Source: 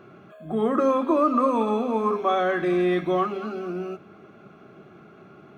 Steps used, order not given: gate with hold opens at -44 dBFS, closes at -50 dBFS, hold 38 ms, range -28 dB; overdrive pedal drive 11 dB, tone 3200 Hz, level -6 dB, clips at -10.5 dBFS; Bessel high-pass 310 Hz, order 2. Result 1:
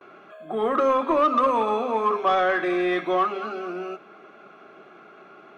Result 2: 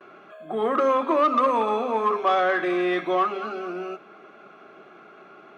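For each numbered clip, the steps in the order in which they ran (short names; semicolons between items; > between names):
Bessel high-pass > gate with hold > overdrive pedal; gate with hold > overdrive pedal > Bessel high-pass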